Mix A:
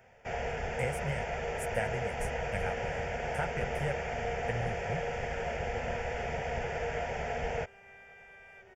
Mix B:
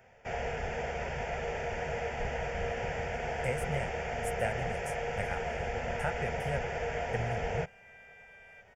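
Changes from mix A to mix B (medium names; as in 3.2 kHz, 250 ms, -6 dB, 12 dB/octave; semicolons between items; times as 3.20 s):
speech: entry +2.65 s; second sound: add steep high-pass 1.4 kHz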